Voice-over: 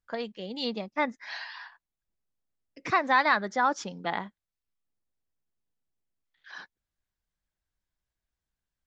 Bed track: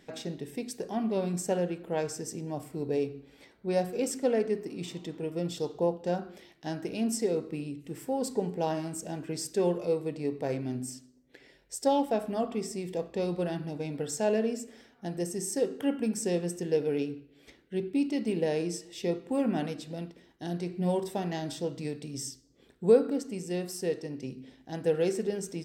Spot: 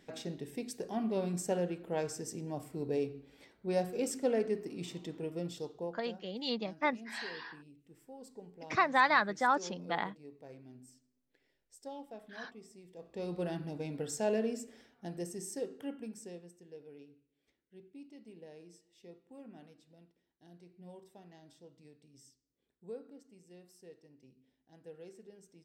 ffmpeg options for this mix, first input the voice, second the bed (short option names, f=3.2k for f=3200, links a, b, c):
-filter_complex "[0:a]adelay=5850,volume=-3.5dB[a];[1:a]volume=11.5dB,afade=t=out:st=5.17:d=0.94:silence=0.158489,afade=t=in:st=12.95:d=0.52:silence=0.16788,afade=t=out:st=14.62:d=1.9:silence=0.112202[b];[a][b]amix=inputs=2:normalize=0"